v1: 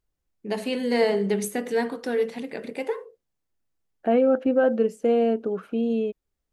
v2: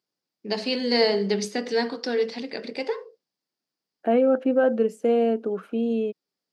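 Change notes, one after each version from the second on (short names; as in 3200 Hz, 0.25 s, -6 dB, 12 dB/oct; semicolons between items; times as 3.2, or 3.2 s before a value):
first voice: add synth low-pass 4900 Hz, resonance Q 6.5; master: add HPF 170 Hz 24 dB/oct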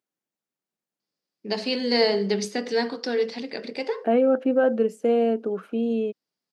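first voice: entry +1.00 s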